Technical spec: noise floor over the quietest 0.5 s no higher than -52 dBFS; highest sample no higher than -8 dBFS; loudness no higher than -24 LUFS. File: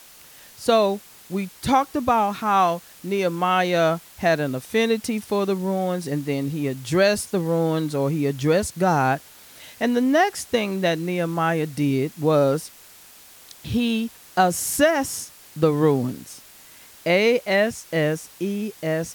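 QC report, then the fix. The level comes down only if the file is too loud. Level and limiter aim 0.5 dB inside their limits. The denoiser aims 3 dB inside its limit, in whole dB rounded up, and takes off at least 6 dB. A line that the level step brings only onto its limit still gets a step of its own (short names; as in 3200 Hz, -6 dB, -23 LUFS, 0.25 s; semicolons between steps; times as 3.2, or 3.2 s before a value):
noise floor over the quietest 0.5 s -47 dBFS: fail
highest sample -4.5 dBFS: fail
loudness -22.5 LUFS: fail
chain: denoiser 6 dB, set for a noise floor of -47 dBFS; gain -2 dB; limiter -8.5 dBFS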